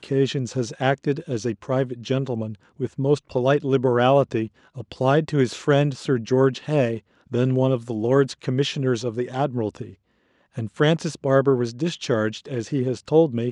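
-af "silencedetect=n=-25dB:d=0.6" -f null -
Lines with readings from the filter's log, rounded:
silence_start: 9.82
silence_end: 10.58 | silence_duration: 0.75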